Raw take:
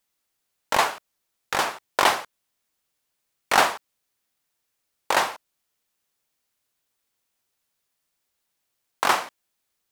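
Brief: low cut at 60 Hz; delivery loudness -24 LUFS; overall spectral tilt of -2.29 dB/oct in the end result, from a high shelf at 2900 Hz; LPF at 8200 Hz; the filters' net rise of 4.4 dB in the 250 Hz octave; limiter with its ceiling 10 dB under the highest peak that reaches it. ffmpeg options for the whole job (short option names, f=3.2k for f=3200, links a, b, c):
-af "highpass=60,lowpass=8.2k,equalizer=f=250:t=o:g=6,highshelf=f=2.9k:g=-5,volume=4.5dB,alimiter=limit=-9.5dB:level=0:latency=1"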